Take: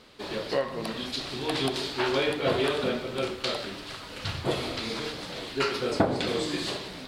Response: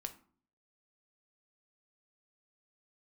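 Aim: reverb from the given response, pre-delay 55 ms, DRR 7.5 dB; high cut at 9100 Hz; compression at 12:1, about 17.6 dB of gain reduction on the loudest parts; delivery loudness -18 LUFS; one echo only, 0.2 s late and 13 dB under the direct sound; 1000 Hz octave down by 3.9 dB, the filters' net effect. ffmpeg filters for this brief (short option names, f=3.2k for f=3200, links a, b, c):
-filter_complex "[0:a]lowpass=9.1k,equalizer=f=1k:t=o:g=-5.5,acompressor=threshold=-36dB:ratio=12,aecho=1:1:200:0.224,asplit=2[a][b];[1:a]atrim=start_sample=2205,adelay=55[c];[b][c]afir=irnorm=-1:irlink=0,volume=-5dB[d];[a][d]amix=inputs=2:normalize=0,volume=20.5dB"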